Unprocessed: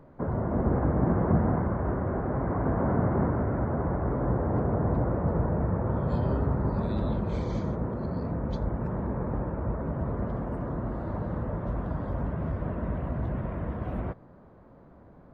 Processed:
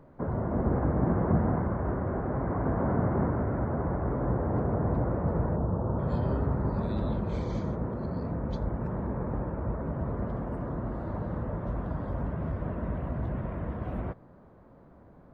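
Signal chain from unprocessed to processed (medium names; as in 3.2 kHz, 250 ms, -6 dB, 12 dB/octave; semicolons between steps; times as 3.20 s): 5.56–5.99 s: low-pass 1.3 kHz 24 dB/octave; trim -1.5 dB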